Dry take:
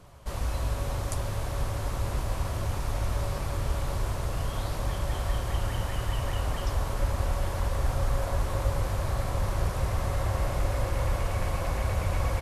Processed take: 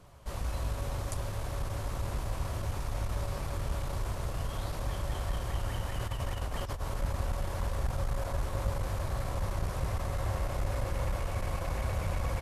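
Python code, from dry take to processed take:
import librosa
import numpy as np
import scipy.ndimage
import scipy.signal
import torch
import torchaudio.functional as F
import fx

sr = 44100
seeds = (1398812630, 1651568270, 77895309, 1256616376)

y = fx.over_compress(x, sr, threshold_db=-29.0, ratio=-0.5, at=(6.01, 6.82))
y = fx.transformer_sat(y, sr, knee_hz=76.0)
y = y * librosa.db_to_amplitude(-3.5)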